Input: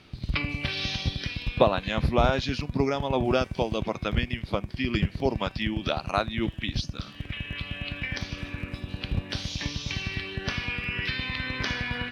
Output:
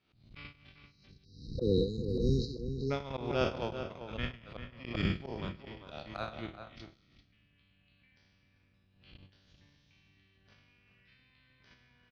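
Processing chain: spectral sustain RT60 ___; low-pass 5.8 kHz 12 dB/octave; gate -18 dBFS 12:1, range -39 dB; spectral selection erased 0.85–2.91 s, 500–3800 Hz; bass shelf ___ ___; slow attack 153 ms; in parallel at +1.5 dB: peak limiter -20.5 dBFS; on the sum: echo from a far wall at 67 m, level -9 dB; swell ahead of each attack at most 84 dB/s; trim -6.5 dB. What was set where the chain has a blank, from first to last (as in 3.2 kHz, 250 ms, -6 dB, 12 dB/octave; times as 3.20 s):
1.44 s, 150 Hz, -5 dB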